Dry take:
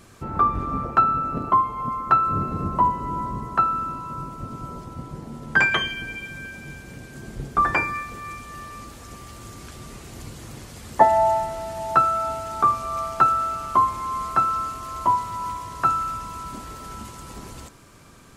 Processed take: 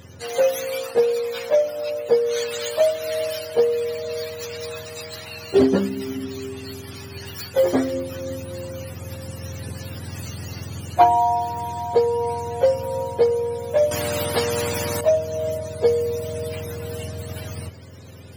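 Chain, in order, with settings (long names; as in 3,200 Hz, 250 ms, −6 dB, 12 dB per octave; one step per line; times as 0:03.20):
frequency axis turned over on the octave scale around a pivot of 790 Hz
speech leveller within 4 dB 0.5 s
0:13.91–0:15.01: every bin compressed towards the loudest bin 2 to 1
level +2 dB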